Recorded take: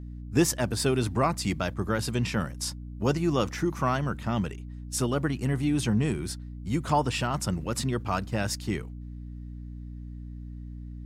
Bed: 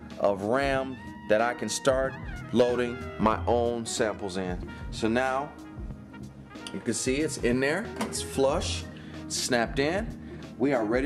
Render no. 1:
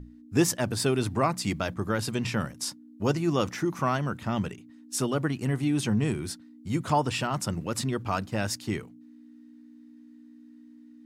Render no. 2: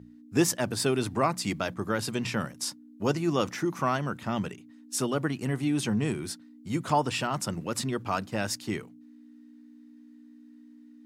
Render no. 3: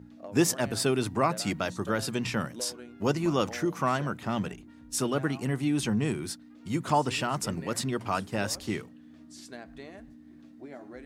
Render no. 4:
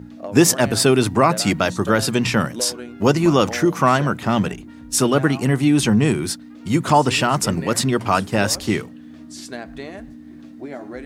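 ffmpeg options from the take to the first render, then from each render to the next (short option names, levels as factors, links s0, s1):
-af "bandreject=f=60:t=h:w=6,bandreject=f=120:t=h:w=6,bandreject=f=180:t=h:w=6"
-af "highpass=100,lowshelf=f=140:g=-4"
-filter_complex "[1:a]volume=0.106[s0];[0:a][s0]amix=inputs=2:normalize=0"
-af "volume=3.76,alimiter=limit=0.794:level=0:latency=1"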